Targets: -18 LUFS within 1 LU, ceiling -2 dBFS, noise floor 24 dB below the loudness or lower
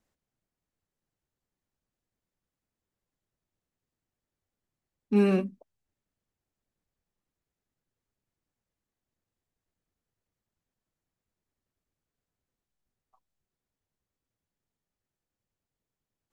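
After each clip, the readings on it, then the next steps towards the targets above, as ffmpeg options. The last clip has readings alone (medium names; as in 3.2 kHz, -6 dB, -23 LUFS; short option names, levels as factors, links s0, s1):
loudness -26.0 LUFS; peak level -12.5 dBFS; loudness target -18.0 LUFS
-> -af "volume=2.51"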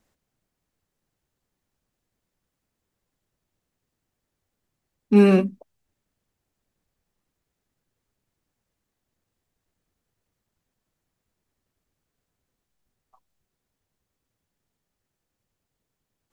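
loudness -18.0 LUFS; peak level -4.5 dBFS; noise floor -83 dBFS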